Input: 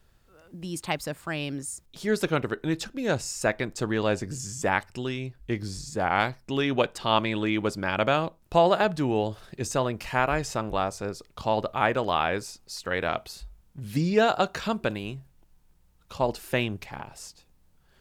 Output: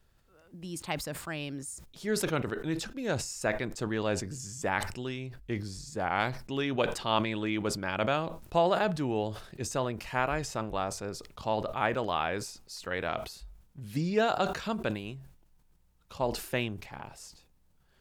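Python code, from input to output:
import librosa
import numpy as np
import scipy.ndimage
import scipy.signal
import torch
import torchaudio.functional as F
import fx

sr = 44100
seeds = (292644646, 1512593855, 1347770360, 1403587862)

y = fx.sustainer(x, sr, db_per_s=84.0)
y = F.gain(torch.from_numpy(y), -5.5).numpy()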